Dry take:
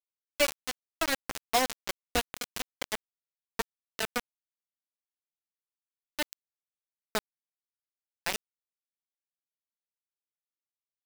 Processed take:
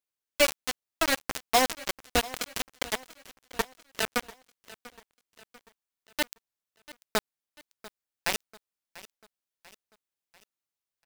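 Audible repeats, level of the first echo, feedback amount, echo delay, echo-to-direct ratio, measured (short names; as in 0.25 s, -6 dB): 3, -19.0 dB, 48%, 0.692 s, -18.0 dB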